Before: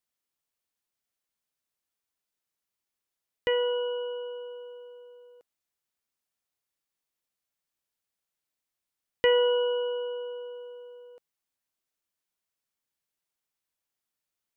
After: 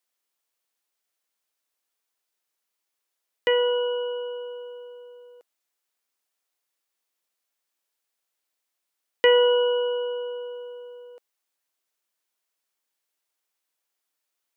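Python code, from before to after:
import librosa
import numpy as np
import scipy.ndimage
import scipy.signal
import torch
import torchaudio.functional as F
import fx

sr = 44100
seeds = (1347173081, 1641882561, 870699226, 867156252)

y = scipy.signal.sosfilt(scipy.signal.butter(2, 340.0, 'highpass', fs=sr, output='sos'), x)
y = y * 10.0 ** (5.5 / 20.0)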